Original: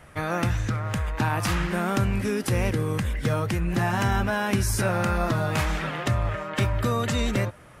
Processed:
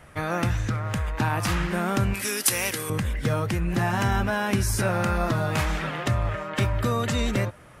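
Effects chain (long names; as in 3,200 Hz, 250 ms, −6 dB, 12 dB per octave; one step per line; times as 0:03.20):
0:02.14–0:02.90: spectral tilt +4.5 dB per octave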